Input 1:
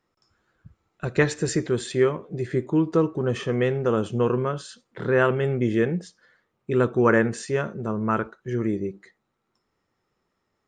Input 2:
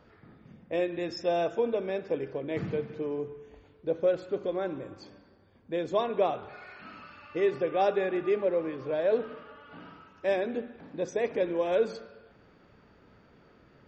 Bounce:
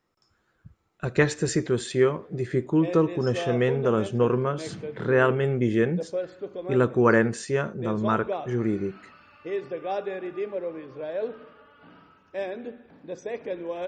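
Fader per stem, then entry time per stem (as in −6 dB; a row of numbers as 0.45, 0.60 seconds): −0.5, −4.0 decibels; 0.00, 2.10 seconds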